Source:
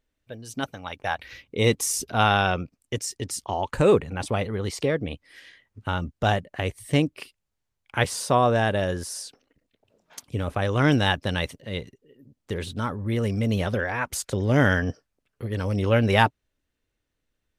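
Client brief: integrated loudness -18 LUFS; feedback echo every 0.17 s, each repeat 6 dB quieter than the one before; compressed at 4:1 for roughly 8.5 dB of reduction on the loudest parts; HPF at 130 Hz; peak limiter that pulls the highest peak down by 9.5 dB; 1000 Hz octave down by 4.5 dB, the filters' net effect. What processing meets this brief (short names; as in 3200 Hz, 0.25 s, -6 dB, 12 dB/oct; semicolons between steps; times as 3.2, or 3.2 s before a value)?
HPF 130 Hz; bell 1000 Hz -6.5 dB; compressor 4:1, threshold -25 dBFS; limiter -21 dBFS; feedback echo 0.17 s, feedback 50%, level -6 dB; gain +15 dB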